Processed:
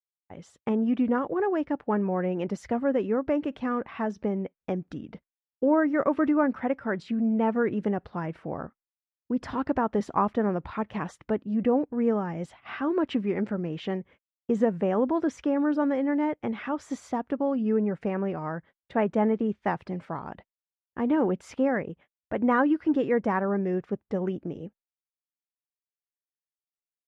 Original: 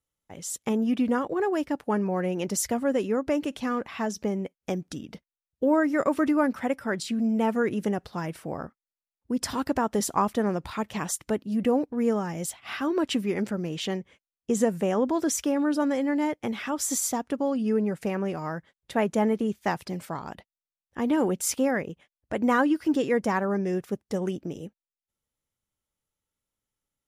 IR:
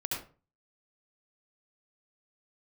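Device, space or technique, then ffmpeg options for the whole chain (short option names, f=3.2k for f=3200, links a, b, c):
hearing-loss simulation: -af "lowpass=2k,agate=range=-33dB:threshold=-49dB:ratio=3:detection=peak"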